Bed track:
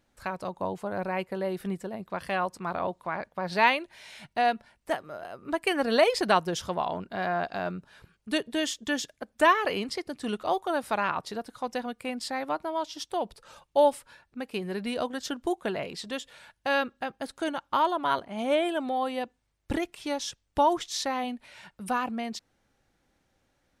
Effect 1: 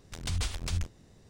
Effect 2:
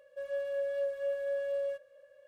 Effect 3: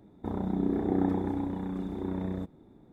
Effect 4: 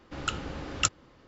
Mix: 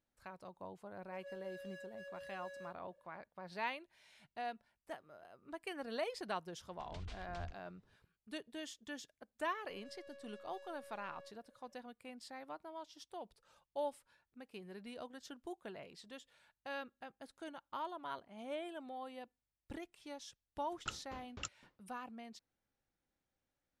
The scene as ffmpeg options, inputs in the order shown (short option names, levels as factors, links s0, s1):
-filter_complex "[2:a]asplit=2[s0][s1];[0:a]volume=0.126[s2];[s0]aeval=exprs='0.0211*(abs(mod(val(0)/0.0211+3,4)-2)-1)':c=same[s3];[1:a]lowpass=3800[s4];[s1]aeval=exprs='(tanh(141*val(0)+0.4)-tanh(0.4))/141':c=same[s5];[4:a]aeval=exprs='val(0)*pow(10,-39*if(lt(mod(3.9*n/s,1),2*abs(3.9)/1000),1-mod(3.9*n/s,1)/(2*abs(3.9)/1000),(mod(3.9*n/s,1)-2*abs(3.9)/1000)/(1-2*abs(3.9)/1000))/20)':c=same[s6];[s3]atrim=end=2.27,asetpts=PTS-STARTPTS,volume=0.224,afade=t=in:d=0.004:c=hsin,afade=t=out:st=2.266:d=0.004:c=hsin,adelay=950[s7];[s4]atrim=end=1.29,asetpts=PTS-STARTPTS,volume=0.158,afade=t=in:d=0.004:c=hsin,afade=t=out:st=1.286:d=0.004:c=hsin,adelay=6670[s8];[s5]atrim=end=2.27,asetpts=PTS-STARTPTS,volume=0.224,afade=t=in:d=0.004:c=hsin,afade=t=out:st=2.266:d=0.004:c=hsin,adelay=9530[s9];[s6]atrim=end=1.27,asetpts=PTS-STARTPTS,volume=0.422,afade=t=in:d=0.004:c=hsin,afade=t=out:st=1.266:d=0.004:c=hsin,adelay=20600[s10];[s2][s7][s8][s9][s10]amix=inputs=5:normalize=0"